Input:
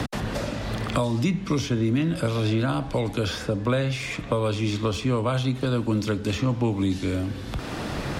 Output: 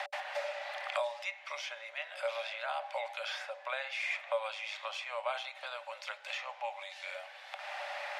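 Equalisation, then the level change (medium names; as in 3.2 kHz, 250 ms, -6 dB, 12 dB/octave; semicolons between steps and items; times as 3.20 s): rippled Chebyshev high-pass 560 Hz, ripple 9 dB; treble shelf 6.1 kHz -11.5 dB; 0.0 dB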